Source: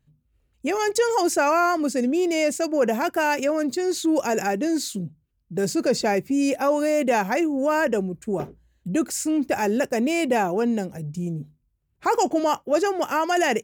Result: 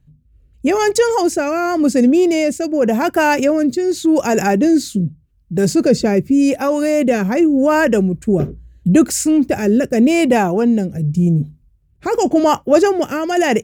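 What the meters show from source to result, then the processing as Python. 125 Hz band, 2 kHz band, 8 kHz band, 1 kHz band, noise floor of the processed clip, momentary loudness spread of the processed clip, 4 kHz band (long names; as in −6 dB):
+14.0 dB, +5.0 dB, +5.0 dB, +3.5 dB, −55 dBFS, 6 LU, +4.5 dB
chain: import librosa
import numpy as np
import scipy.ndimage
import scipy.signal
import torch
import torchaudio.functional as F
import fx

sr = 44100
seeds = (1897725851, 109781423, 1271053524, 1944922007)

y = fx.rotary(x, sr, hz=0.85)
y = fx.low_shelf(y, sr, hz=210.0, db=12.0)
y = fx.rider(y, sr, range_db=10, speed_s=2.0)
y = F.gain(torch.from_numpy(y), 7.0).numpy()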